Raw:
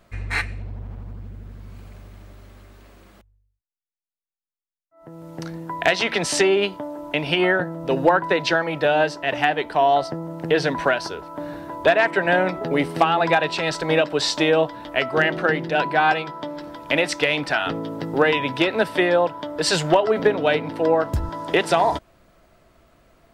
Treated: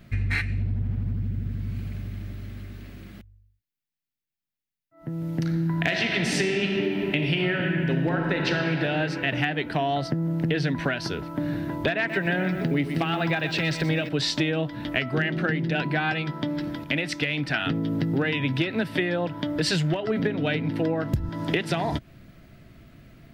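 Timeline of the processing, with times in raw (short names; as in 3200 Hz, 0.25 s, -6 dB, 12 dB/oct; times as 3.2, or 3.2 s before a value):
5.43–8.72 reverb throw, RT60 2.7 s, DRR 1 dB
11.97–14.09 lo-fi delay 0.124 s, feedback 35%, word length 7-bit, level -11 dB
16.84–17.54 gain -5.5 dB
whole clip: ten-band EQ 125 Hz +10 dB, 250 Hz +5 dB, 500 Hz -6 dB, 1000 Hz -10 dB, 2000 Hz +3 dB, 8000 Hz -7 dB; compressor 5:1, threshold -27 dBFS; gain +4.5 dB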